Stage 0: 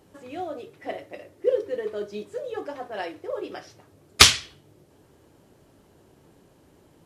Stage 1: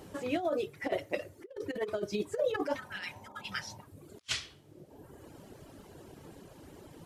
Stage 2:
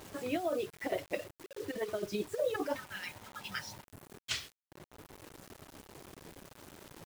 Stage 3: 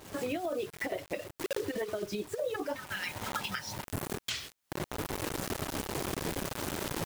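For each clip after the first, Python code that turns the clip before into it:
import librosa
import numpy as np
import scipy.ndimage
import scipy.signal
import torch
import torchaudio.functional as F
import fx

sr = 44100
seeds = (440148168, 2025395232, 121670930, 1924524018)

y1 = fx.dereverb_blind(x, sr, rt60_s=0.92)
y1 = fx.over_compress(y1, sr, threshold_db=-35.0, ratio=-0.5)
y1 = fx.spec_repair(y1, sr, seeds[0], start_s=2.79, length_s=0.96, low_hz=210.0, high_hz=1200.0, source='after')
y2 = fx.quant_dither(y1, sr, seeds[1], bits=8, dither='none')
y2 = F.gain(torch.from_numpy(y2), -2.0).numpy()
y3 = fx.recorder_agc(y2, sr, target_db=-25.0, rise_db_per_s=59.0, max_gain_db=30)
y3 = F.gain(torch.from_numpy(y3), -2.0).numpy()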